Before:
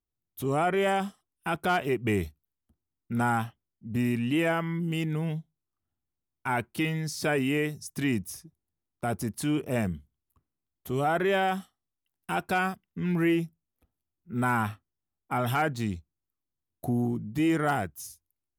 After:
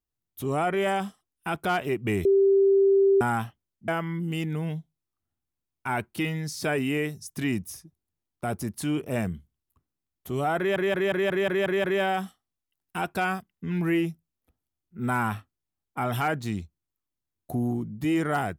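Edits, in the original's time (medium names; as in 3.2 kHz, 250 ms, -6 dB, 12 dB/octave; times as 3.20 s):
2.25–3.21 s: bleep 392 Hz -16 dBFS
3.88–4.48 s: delete
11.18 s: stutter 0.18 s, 8 plays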